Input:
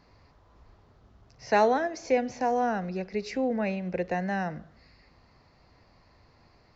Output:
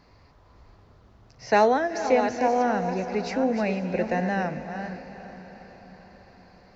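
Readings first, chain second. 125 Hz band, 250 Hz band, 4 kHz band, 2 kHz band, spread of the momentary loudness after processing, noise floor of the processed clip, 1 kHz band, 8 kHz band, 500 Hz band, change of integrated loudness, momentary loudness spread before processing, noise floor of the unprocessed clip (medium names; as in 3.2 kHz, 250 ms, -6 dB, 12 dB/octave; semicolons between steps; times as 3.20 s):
+3.5 dB, +4.0 dB, +4.0 dB, +4.0 dB, 18 LU, -56 dBFS, +4.0 dB, no reading, +4.0 dB, +3.5 dB, 9 LU, -61 dBFS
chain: chunks repeated in reverse 382 ms, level -8.5 dB; echo that smears into a reverb 467 ms, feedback 57%, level -13 dB; trim +3 dB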